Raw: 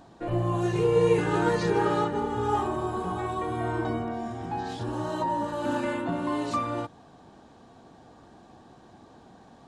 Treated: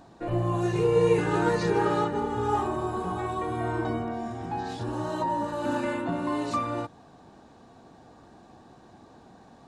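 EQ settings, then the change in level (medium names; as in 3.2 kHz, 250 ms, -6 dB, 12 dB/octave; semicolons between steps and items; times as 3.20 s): band-stop 3.2 kHz, Q 15; 0.0 dB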